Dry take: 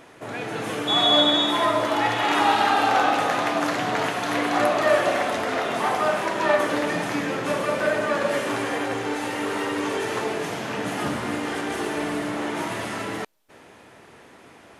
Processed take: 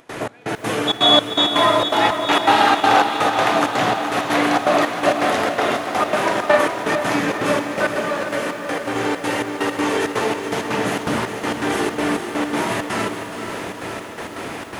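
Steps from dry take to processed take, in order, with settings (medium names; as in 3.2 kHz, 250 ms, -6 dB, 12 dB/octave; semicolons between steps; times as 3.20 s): upward compressor, threshold -23 dBFS; trance gate ".xx..x.xxx" 164 bpm -24 dB; 7.95–8.96 s: compression 2:1, threshold -30 dBFS, peak gain reduction 6.5 dB; echo that smears into a reverb 512 ms, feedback 65%, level -10 dB; bit-crushed delay 421 ms, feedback 55%, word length 8-bit, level -10.5 dB; trim +5.5 dB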